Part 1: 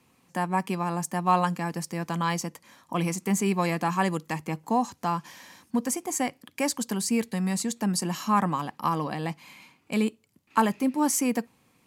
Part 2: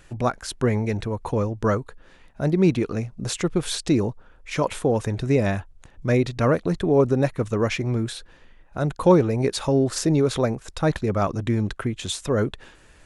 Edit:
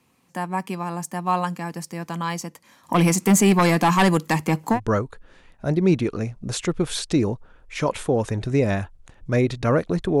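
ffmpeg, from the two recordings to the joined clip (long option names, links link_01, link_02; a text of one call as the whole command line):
ffmpeg -i cue0.wav -i cue1.wav -filter_complex "[0:a]asplit=3[link_01][link_02][link_03];[link_01]afade=type=out:start_time=2.83:duration=0.02[link_04];[link_02]aeval=exprs='0.299*sin(PI/2*2.24*val(0)/0.299)':channel_layout=same,afade=type=in:start_time=2.83:duration=0.02,afade=type=out:start_time=4.8:duration=0.02[link_05];[link_03]afade=type=in:start_time=4.8:duration=0.02[link_06];[link_04][link_05][link_06]amix=inputs=3:normalize=0,apad=whole_dur=10.2,atrim=end=10.2,atrim=end=4.8,asetpts=PTS-STARTPTS[link_07];[1:a]atrim=start=1.46:end=6.96,asetpts=PTS-STARTPTS[link_08];[link_07][link_08]acrossfade=duration=0.1:curve1=tri:curve2=tri" out.wav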